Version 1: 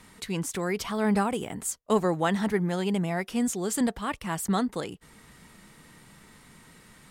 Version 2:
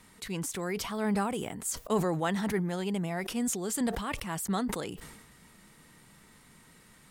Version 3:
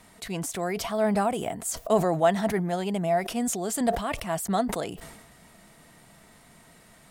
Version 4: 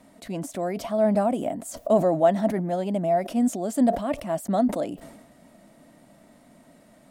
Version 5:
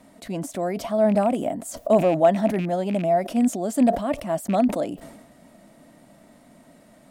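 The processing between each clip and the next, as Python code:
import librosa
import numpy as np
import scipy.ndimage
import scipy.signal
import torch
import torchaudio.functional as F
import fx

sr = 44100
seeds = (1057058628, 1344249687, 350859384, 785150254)

y1 = fx.high_shelf(x, sr, hz=8700.0, db=4.5)
y1 = fx.sustainer(y1, sr, db_per_s=48.0)
y1 = F.gain(torch.from_numpy(y1), -5.0).numpy()
y2 = fx.peak_eq(y1, sr, hz=670.0, db=14.0, octaves=0.3)
y2 = F.gain(torch.from_numpy(y2), 2.5).numpy()
y3 = fx.small_body(y2, sr, hz=(270.0, 570.0), ring_ms=30, db=16)
y3 = F.gain(torch.from_numpy(y3), -7.0).numpy()
y4 = fx.rattle_buzz(y3, sr, strikes_db=-28.0, level_db=-29.0)
y4 = F.gain(torch.from_numpy(y4), 2.0).numpy()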